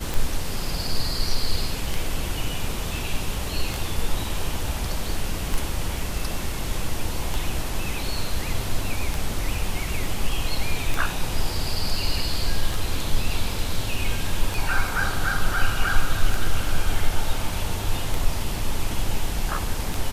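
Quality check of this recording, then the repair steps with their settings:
tick 33 1/3 rpm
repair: de-click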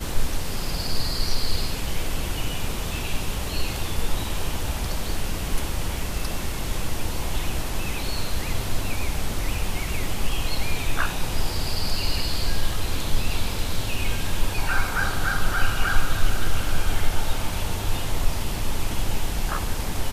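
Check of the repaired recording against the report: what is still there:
none

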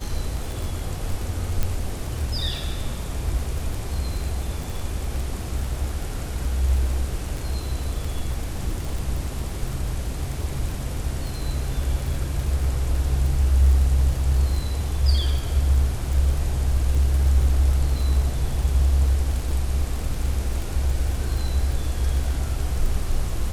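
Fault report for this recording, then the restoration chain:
crackle 23/s -26 dBFS
1.63 pop -10 dBFS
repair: de-click

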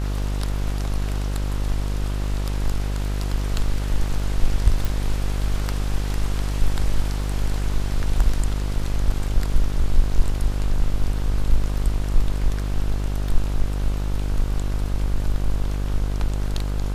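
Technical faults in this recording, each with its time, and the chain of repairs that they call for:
buzz 50 Hz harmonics 32 -24 dBFS
4.85 pop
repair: de-click; de-hum 50 Hz, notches 32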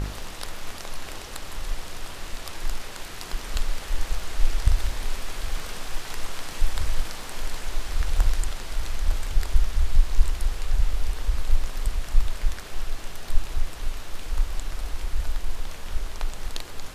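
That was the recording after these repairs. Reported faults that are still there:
none

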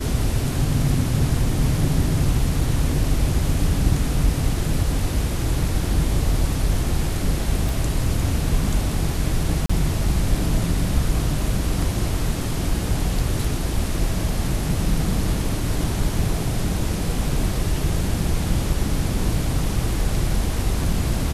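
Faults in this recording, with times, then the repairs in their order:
7.69 pop
9.66–9.7 gap 35 ms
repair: de-click; interpolate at 9.66, 35 ms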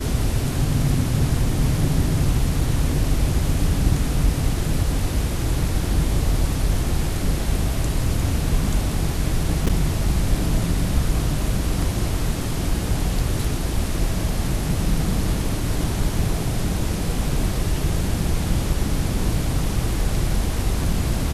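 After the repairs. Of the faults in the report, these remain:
none

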